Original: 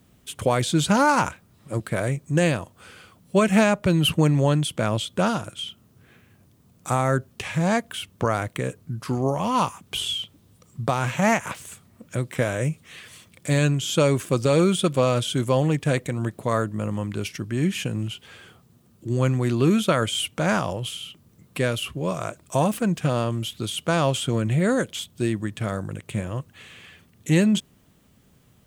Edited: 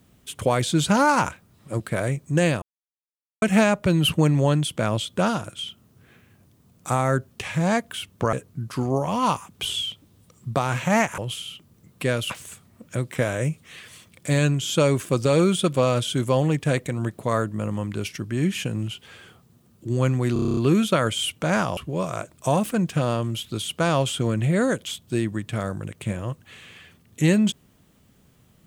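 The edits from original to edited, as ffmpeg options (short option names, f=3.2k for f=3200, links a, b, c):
-filter_complex "[0:a]asplit=15[a][b][c][d][e][f][g][h][i][j][k][l][m][n][o];[a]atrim=end=2.62,asetpts=PTS-STARTPTS,afade=t=out:st=2.616:d=0.004:c=hsin[p];[b]atrim=start=2.62:end=3.42,asetpts=PTS-STARTPTS,volume=0[q];[c]atrim=start=3.42:end=8.332,asetpts=PTS-STARTPTS,afade=t=in:d=0.004:c=hsin[r];[d]atrim=start=8.648:end=11.502[s];[e]atrim=start=20.728:end=21.852[t];[f]atrim=start=11.498:end=19.562[u];[g]atrim=start=19.528:end=19.562[v];[h]atrim=start=19.528:end=19.562[w];[i]atrim=start=19.528:end=19.562[x];[j]atrim=start=19.528:end=19.562[y];[k]atrim=start=19.528:end=19.562[z];[l]atrim=start=19.528:end=19.562[aa];[m]atrim=start=19.528:end=19.562[ab];[n]atrim=start=19.528:end=20.732[ac];[o]atrim=start=21.848[ad];[p][q][r]concat=n=3:v=0:a=1[ae];[ae][s]acrossfade=d=0.004:c1=hsin:c2=hsin[af];[af][t]acrossfade=d=0.004:c1=hsin:c2=hsin[ag];[ag][u]acrossfade=d=0.004:c1=hsin:c2=hsin[ah];[ah][v]acrossfade=d=0.004:c1=hsin:c2=hsin[ai];[ai][w]acrossfade=d=0.004:c1=hsin:c2=hsin[aj];[aj][x]acrossfade=d=0.004:c1=hsin:c2=hsin[ak];[ak][y]acrossfade=d=0.004:c1=hsin:c2=hsin[al];[al][z]acrossfade=d=0.004:c1=hsin:c2=hsin[am];[am][aa]acrossfade=d=0.004:c1=hsin:c2=hsin[an];[an][ab]acrossfade=d=0.004:c1=hsin:c2=hsin[ao];[ao][ac]acrossfade=d=0.004:c1=hsin:c2=hsin[ap];[ap][ad]acrossfade=d=0.004:c1=hsin:c2=hsin"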